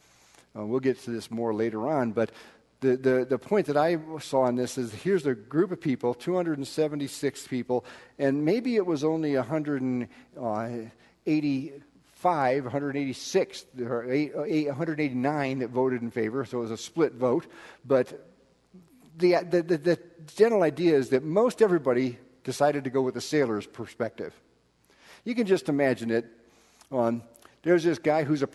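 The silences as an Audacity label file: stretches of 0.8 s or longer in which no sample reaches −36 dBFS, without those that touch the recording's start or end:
18.160000	19.200000	silence
24.290000	25.270000	silence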